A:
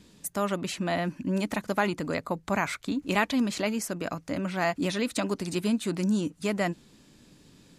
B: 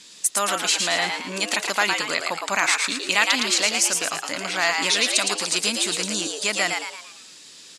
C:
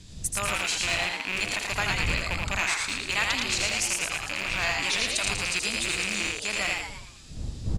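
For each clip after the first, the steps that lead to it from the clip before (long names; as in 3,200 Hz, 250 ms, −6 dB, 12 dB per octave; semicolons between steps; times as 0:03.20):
meter weighting curve ITU-R 468; in parallel at −1 dB: brickwall limiter −15.5 dBFS, peak gain reduction 9.5 dB; on the sum: echo with shifted repeats 112 ms, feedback 46%, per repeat +120 Hz, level −4 dB
loose part that buzzes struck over −43 dBFS, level −9 dBFS; wind on the microphone 100 Hz −30 dBFS; single-tap delay 81 ms −4.5 dB; level −8.5 dB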